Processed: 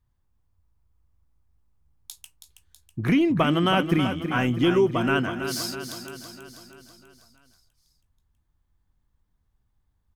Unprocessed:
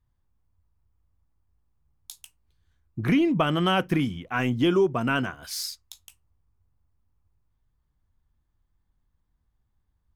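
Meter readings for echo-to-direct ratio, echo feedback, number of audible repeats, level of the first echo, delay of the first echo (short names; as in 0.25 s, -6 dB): -7.5 dB, 57%, 6, -9.0 dB, 0.324 s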